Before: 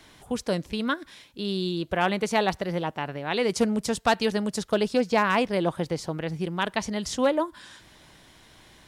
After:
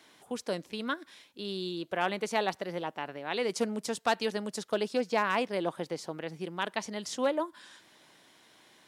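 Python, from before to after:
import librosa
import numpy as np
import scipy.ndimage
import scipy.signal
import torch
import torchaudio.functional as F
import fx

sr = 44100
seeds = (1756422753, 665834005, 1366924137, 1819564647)

y = scipy.signal.sosfilt(scipy.signal.butter(2, 240.0, 'highpass', fs=sr, output='sos'), x)
y = y * librosa.db_to_amplitude(-5.5)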